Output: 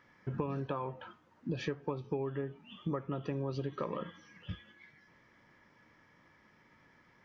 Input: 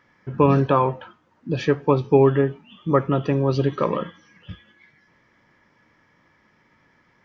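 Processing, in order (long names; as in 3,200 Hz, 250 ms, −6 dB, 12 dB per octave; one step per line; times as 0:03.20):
downward compressor 16 to 1, threshold −28 dBFS, peak gain reduction 18.5 dB
level −4 dB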